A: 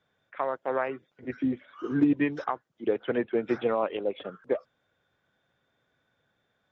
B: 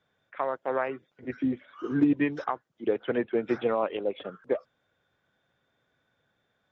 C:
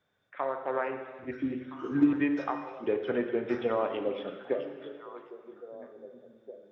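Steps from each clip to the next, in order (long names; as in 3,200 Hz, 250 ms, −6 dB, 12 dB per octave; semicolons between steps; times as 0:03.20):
no processing that can be heard
echo through a band-pass that steps 658 ms, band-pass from 3,400 Hz, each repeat −1.4 octaves, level −9 dB; reverb whose tail is shaped and stops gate 500 ms falling, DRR 5 dB; level −3 dB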